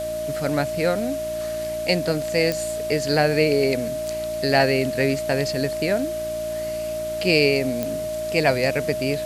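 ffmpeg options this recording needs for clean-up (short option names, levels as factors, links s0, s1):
-af "adeclick=t=4,bandreject=f=57.6:t=h:w=4,bandreject=f=115.2:t=h:w=4,bandreject=f=172.8:t=h:w=4,bandreject=f=230.4:t=h:w=4,bandreject=f=288:t=h:w=4,bandreject=f=345.6:t=h:w=4,bandreject=f=620:w=30,afwtdn=0.01"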